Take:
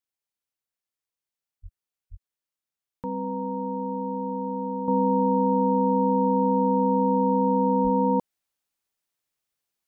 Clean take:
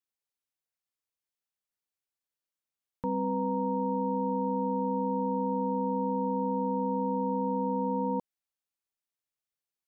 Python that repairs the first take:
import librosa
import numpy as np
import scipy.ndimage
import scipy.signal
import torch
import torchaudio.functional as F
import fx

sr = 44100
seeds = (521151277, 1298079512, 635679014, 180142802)

y = fx.highpass(x, sr, hz=140.0, slope=24, at=(1.62, 1.74), fade=0.02)
y = fx.highpass(y, sr, hz=140.0, slope=24, at=(2.1, 2.22), fade=0.02)
y = fx.highpass(y, sr, hz=140.0, slope=24, at=(7.83, 7.95), fade=0.02)
y = fx.gain(y, sr, db=fx.steps((0.0, 0.0), (4.88, -8.0)))